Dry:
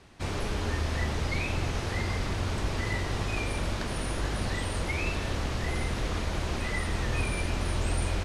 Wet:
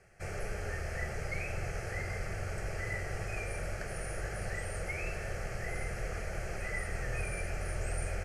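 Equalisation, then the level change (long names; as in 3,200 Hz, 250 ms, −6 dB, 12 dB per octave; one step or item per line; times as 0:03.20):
parametric band 64 Hz −12 dB 0.59 octaves
phaser with its sweep stopped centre 1,000 Hz, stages 6
notch filter 2,900 Hz, Q 21
−3.0 dB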